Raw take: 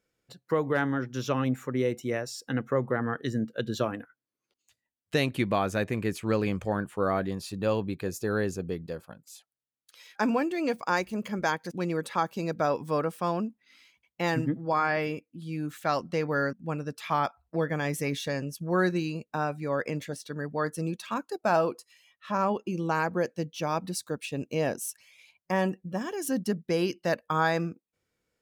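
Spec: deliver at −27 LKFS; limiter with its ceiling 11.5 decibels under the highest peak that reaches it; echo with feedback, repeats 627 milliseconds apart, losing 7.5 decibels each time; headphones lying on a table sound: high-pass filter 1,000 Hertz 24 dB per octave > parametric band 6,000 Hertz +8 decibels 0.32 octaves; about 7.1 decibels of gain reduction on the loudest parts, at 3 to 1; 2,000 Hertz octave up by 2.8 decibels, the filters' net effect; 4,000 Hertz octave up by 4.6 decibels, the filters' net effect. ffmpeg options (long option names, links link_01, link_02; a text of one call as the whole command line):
ffmpeg -i in.wav -af "equalizer=frequency=2000:width_type=o:gain=3,equalizer=frequency=4000:width_type=o:gain=3.5,acompressor=threshold=-29dB:ratio=3,alimiter=level_in=3dB:limit=-24dB:level=0:latency=1,volume=-3dB,highpass=frequency=1000:width=0.5412,highpass=frequency=1000:width=1.3066,equalizer=frequency=6000:width_type=o:width=0.32:gain=8,aecho=1:1:627|1254|1881|2508|3135:0.422|0.177|0.0744|0.0312|0.0131,volume=14.5dB" out.wav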